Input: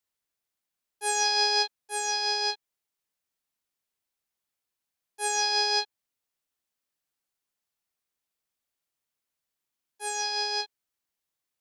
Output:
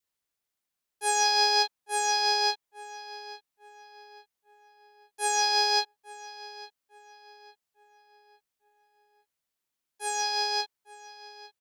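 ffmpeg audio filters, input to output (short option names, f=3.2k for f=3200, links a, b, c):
-filter_complex "[0:a]asplit=2[a][b];[b]adelay=853,lowpass=f=3k:p=1,volume=-15.5dB,asplit=2[c][d];[d]adelay=853,lowpass=f=3k:p=1,volume=0.45,asplit=2[e][f];[f]adelay=853,lowpass=f=3k:p=1,volume=0.45,asplit=2[g][h];[h]adelay=853,lowpass=f=3k:p=1,volume=0.45[i];[a][c][e][g][i]amix=inputs=5:normalize=0,adynamicequalizer=threshold=0.00794:dfrequency=930:dqfactor=1.9:tfrequency=930:tqfactor=1.9:attack=5:release=100:ratio=0.375:range=2:mode=boostabove:tftype=bell,acrusher=bits=8:mode=log:mix=0:aa=0.000001"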